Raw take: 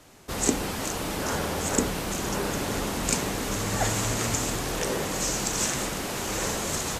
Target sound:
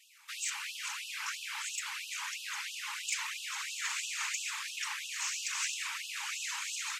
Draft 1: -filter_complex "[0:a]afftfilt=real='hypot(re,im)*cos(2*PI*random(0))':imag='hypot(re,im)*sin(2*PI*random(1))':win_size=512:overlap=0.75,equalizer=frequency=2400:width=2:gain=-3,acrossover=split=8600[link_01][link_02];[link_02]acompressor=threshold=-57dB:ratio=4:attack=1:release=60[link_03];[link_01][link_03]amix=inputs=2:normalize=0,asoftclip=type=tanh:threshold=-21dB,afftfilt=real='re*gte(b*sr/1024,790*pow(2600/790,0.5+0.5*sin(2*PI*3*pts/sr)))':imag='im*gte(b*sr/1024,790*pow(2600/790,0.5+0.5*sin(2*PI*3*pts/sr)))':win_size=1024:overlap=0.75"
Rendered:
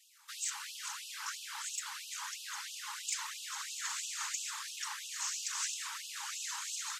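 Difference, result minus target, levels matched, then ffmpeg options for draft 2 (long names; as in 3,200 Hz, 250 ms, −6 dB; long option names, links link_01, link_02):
2,000 Hz band −4.0 dB
-filter_complex "[0:a]afftfilt=real='hypot(re,im)*cos(2*PI*random(0))':imag='hypot(re,im)*sin(2*PI*random(1))':win_size=512:overlap=0.75,equalizer=frequency=2400:width=2:gain=8,acrossover=split=8600[link_01][link_02];[link_02]acompressor=threshold=-57dB:ratio=4:attack=1:release=60[link_03];[link_01][link_03]amix=inputs=2:normalize=0,asoftclip=type=tanh:threshold=-21dB,afftfilt=real='re*gte(b*sr/1024,790*pow(2600/790,0.5+0.5*sin(2*PI*3*pts/sr)))':imag='im*gte(b*sr/1024,790*pow(2600/790,0.5+0.5*sin(2*PI*3*pts/sr)))':win_size=1024:overlap=0.75"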